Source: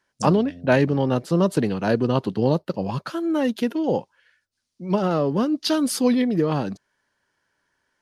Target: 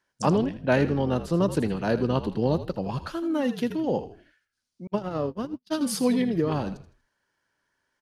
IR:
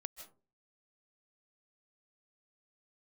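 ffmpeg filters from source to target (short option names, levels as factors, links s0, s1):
-filter_complex "[0:a]asplit=5[s0][s1][s2][s3][s4];[s1]adelay=80,afreqshift=-54,volume=0.251[s5];[s2]adelay=160,afreqshift=-108,volume=0.0881[s6];[s3]adelay=240,afreqshift=-162,volume=0.0309[s7];[s4]adelay=320,afreqshift=-216,volume=0.0107[s8];[s0][s5][s6][s7][s8]amix=inputs=5:normalize=0,asettb=1/sr,asplit=3[s9][s10][s11];[s9]atrim=end=4.874[s12];[s10]atrim=start=4.87:end=5.81,asetpts=PTS-STARTPTS,afade=t=in:d=0.004:c=qsin,afade=t=out:st=0.936:d=0.004:c=qsin,agate=range=0.00355:threshold=0.112:ratio=16:detection=peak[s13];[s11]atrim=start=5.806[s14];[s12][s13]acrossfade=d=0.004:c1=hsin:c2=qsin[s15];[s15][s14]acrossfade=d=0.004:c1=qsin:c2=hsin,volume=0.631"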